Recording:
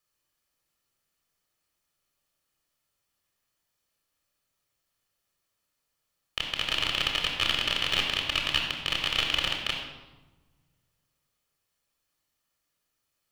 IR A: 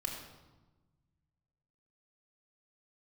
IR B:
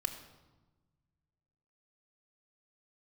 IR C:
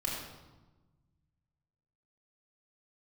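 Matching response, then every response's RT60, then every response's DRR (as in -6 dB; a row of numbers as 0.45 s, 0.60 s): A; 1.2 s, 1.2 s, 1.2 s; 1.0 dB, 7.5 dB, -3.5 dB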